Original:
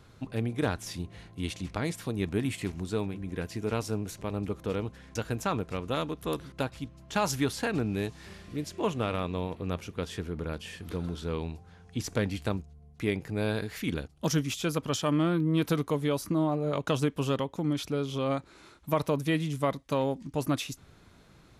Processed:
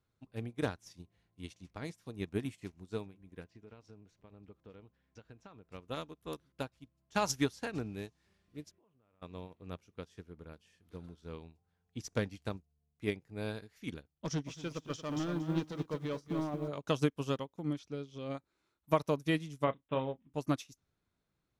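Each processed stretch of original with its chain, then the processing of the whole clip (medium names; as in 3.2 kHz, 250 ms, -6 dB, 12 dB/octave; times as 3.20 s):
3.44–5.72 s: low-pass 4.4 kHz + compression 4:1, threshold -31 dBFS
8.71–9.22 s: low-pass 2.1 kHz + compression 12:1, threshold -42 dBFS
14.02–16.68 s: hard clipper -23.5 dBFS + distance through air 83 m + bit-crushed delay 231 ms, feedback 35%, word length 9-bit, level -7 dB
17.79–18.35 s: low-pass 7.1 kHz + dynamic bell 1 kHz, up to -7 dB, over -47 dBFS, Q 1.5
19.64–20.34 s: doubling 31 ms -8.5 dB + careless resampling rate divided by 6×, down none, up filtered
whole clip: dynamic bell 5.8 kHz, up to +7 dB, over -57 dBFS, Q 2.4; upward expansion 2.5:1, over -40 dBFS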